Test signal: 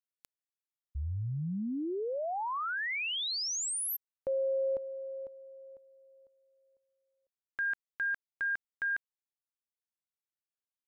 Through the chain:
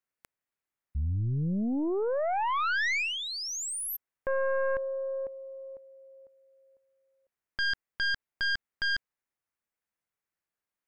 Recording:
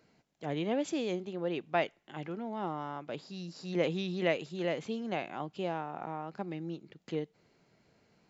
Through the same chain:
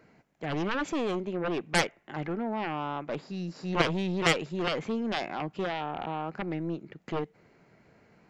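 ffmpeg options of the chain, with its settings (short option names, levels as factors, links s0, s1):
-af "highshelf=f=2700:t=q:w=1.5:g=-7,aeval=exprs='0.188*(cos(1*acos(clip(val(0)/0.188,-1,1)))-cos(1*PI/2))+0.0106*(cos(4*acos(clip(val(0)/0.188,-1,1)))-cos(4*PI/2))+0.0668*(cos(7*acos(clip(val(0)/0.188,-1,1)))-cos(7*PI/2))+0.0106*(cos(8*acos(clip(val(0)/0.188,-1,1)))-cos(8*PI/2))':c=same,volume=1.58"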